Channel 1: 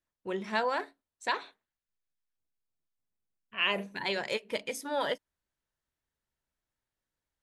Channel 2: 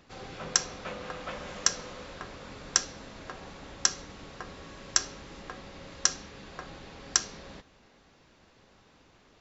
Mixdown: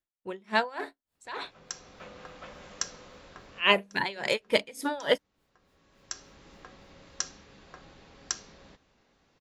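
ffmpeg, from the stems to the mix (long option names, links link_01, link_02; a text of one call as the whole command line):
ffmpeg -i stem1.wav -i stem2.wav -filter_complex "[0:a]bandreject=frequency=6000:width=12,dynaudnorm=framelen=170:gausssize=7:maxgain=13dB,aeval=exprs='val(0)*pow(10,-23*(0.5-0.5*cos(2*PI*3.5*n/s))/20)':channel_layout=same,volume=-1.5dB,asplit=2[link_01][link_02];[1:a]adelay=1150,volume=-7.5dB[link_03];[link_02]apad=whole_len=465305[link_04];[link_03][link_04]sidechaincompress=threshold=-43dB:ratio=16:attack=9.6:release=755[link_05];[link_01][link_05]amix=inputs=2:normalize=0" out.wav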